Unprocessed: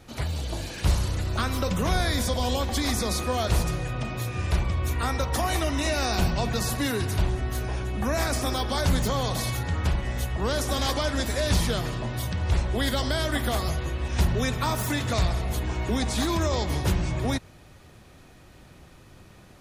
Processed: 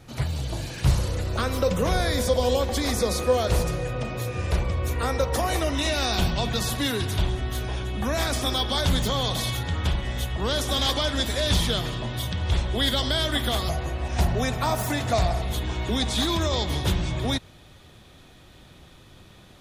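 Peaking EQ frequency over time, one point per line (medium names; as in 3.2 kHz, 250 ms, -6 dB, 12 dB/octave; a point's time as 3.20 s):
peaking EQ +10 dB 0.37 oct
130 Hz
from 0.99 s 500 Hz
from 5.75 s 3.4 kHz
from 13.69 s 710 Hz
from 15.42 s 3.5 kHz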